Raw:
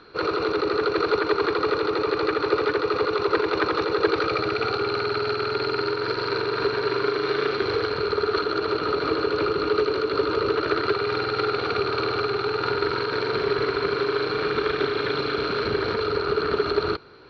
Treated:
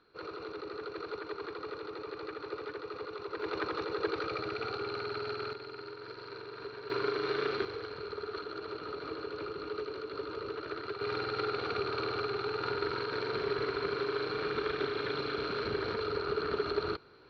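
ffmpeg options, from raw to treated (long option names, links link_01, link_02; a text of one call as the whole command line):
ffmpeg -i in.wav -af "asetnsamples=nb_out_samples=441:pad=0,asendcmd='3.41 volume volume -12dB;5.53 volume volume -19.5dB;6.9 volume volume -8.5dB;7.65 volume volume -16dB;11.01 volume volume -9.5dB',volume=-18dB" out.wav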